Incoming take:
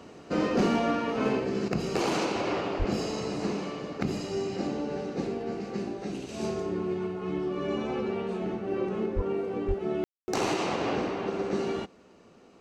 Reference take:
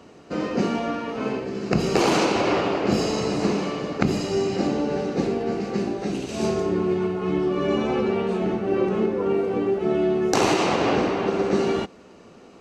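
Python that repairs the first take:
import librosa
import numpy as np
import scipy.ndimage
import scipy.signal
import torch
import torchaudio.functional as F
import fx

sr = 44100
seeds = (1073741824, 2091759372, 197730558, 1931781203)

y = fx.fix_declip(x, sr, threshold_db=-19.0)
y = fx.highpass(y, sr, hz=140.0, slope=24, at=(2.78, 2.9), fade=0.02)
y = fx.highpass(y, sr, hz=140.0, slope=24, at=(9.15, 9.27), fade=0.02)
y = fx.highpass(y, sr, hz=140.0, slope=24, at=(9.67, 9.79), fade=0.02)
y = fx.fix_ambience(y, sr, seeds[0], print_start_s=11.87, print_end_s=12.37, start_s=10.04, end_s=10.28)
y = fx.gain(y, sr, db=fx.steps((0.0, 0.0), (1.68, 8.0)))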